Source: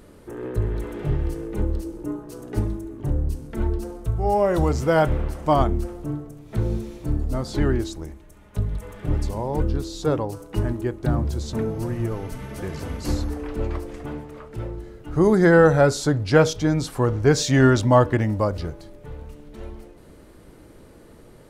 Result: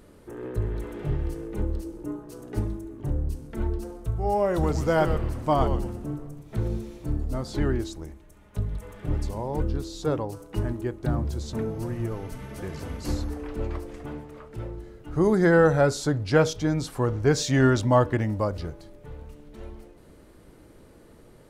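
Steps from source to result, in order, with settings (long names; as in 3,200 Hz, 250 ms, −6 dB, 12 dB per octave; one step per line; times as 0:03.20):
0:04.51–0:06.68: echo with shifted repeats 121 ms, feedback 32%, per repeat −150 Hz, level −8 dB
level −4 dB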